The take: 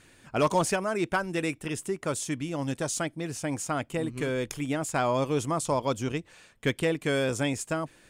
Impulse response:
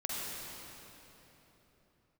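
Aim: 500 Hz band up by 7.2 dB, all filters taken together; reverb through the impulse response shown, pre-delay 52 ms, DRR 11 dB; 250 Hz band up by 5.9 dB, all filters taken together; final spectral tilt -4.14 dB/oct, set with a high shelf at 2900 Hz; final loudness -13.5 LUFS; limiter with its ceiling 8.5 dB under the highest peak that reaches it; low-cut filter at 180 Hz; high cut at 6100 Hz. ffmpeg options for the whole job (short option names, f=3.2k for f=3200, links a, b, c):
-filter_complex "[0:a]highpass=180,lowpass=6.1k,equalizer=f=250:t=o:g=6,equalizer=f=500:t=o:g=7.5,highshelf=f=2.9k:g=-6,alimiter=limit=-16.5dB:level=0:latency=1,asplit=2[a][b];[1:a]atrim=start_sample=2205,adelay=52[c];[b][c]afir=irnorm=-1:irlink=0,volume=-15.5dB[d];[a][d]amix=inputs=2:normalize=0,volume=14dB"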